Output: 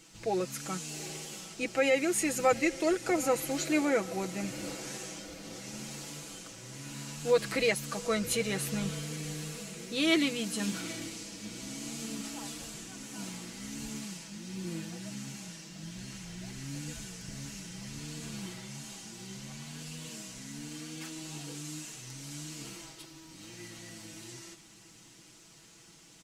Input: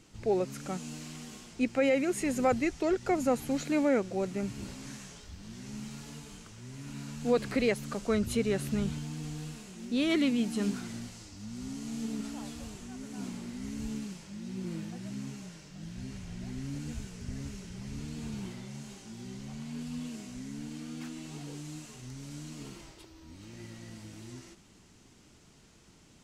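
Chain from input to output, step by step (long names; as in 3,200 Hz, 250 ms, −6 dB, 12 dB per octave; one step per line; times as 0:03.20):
spectral tilt +2 dB per octave
comb filter 6.1 ms, depth 70%
on a send: feedback delay with all-pass diffusion 782 ms, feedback 58%, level −16 dB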